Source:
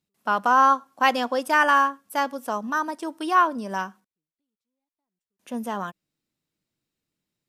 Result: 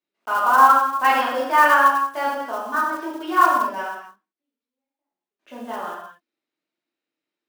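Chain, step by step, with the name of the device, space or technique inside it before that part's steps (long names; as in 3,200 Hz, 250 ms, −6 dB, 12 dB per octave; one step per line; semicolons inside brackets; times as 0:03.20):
high-pass filter 240 Hz 12 dB per octave
reverb whose tail is shaped and stops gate 300 ms falling, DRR −7 dB
dynamic equaliser 1,100 Hz, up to +4 dB, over −21 dBFS, Q 1.9
early digital voice recorder (band-pass filter 270–3,400 Hz; one scale factor per block 5 bits)
level −5.5 dB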